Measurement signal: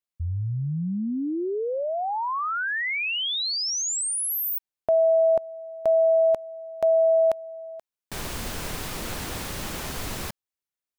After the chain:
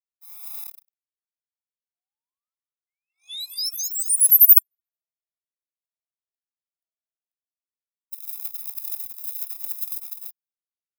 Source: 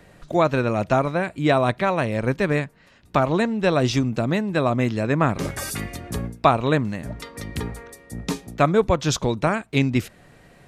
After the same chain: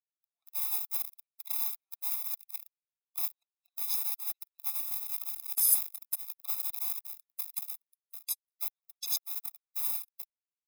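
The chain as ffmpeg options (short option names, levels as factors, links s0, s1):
-filter_complex "[0:a]firequalizer=gain_entry='entry(120,0);entry(180,-28);entry(4200,-16)':delay=0.05:min_phase=1,asplit=2[s0][s1];[s1]adelay=220,lowpass=f=4900:p=1,volume=0.282,asplit=2[s2][s3];[s3]adelay=220,lowpass=f=4900:p=1,volume=0.54,asplit=2[s4][s5];[s5]adelay=220,lowpass=f=4900:p=1,volume=0.54,asplit=2[s6][s7];[s7]adelay=220,lowpass=f=4900:p=1,volume=0.54,asplit=2[s8][s9];[s9]adelay=220,lowpass=f=4900:p=1,volume=0.54,asplit=2[s10][s11];[s11]adelay=220,lowpass=f=4900:p=1,volume=0.54[s12];[s0][s2][s4][s6][s8][s10][s12]amix=inputs=7:normalize=0,acrossover=split=290|1800[s13][s14][s15];[s13]acrusher=bits=5:mix=0:aa=0.000001[s16];[s16][s14][s15]amix=inputs=3:normalize=0,aeval=exprs='val(0)+0.00562*(sin(2*PI*50*n/s)+sin(2*PI*2*50*n/s)/2+sin(2*PI*3*50*n/s)/3+sin(2*PI*4*50*n/s)/4+sin(2*PI*5*50*n/s)/5)':c=same,acompressor=threshold=0.02:ratio=3:attack=0.76:release=66:knee=6:detection=peak,aeval=exprs='0.0501*(cos(1*acos(clip(val(0)/0.0501,-1,1)))-cos(1*PI/2))+0.0224*(cos(5*acos(clip(val(0)/0.0501,-1,1)))-cos(5*PI/2))':c=same,crystalizer=i=4.5:c=0,agate=range=0.00178:threshold=0.0398:ratio=16:release=48:detection=rms,equalizer=f=5100:w=1.4:g=7.5,aexciter=amount=7.9:drive=4.4:freq=9800,afftfilt=real='re*eq(mod(floor(b*sr/1024/680),2),1)':imag='im*eq(mod(floor(b*sr/1024/680),2),1)':win_size=1024:overlap=0.75,volume=0.335"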